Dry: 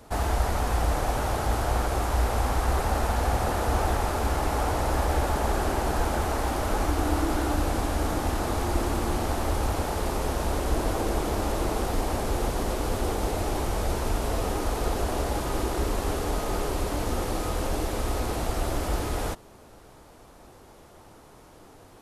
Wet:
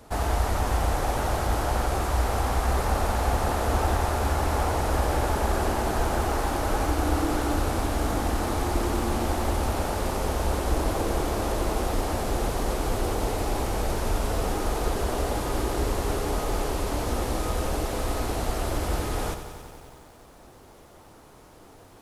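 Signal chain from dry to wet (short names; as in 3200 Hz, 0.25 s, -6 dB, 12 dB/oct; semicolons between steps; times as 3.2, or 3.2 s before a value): lo-fi delay 92 ms, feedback 80%, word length 9-bit, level -11 dB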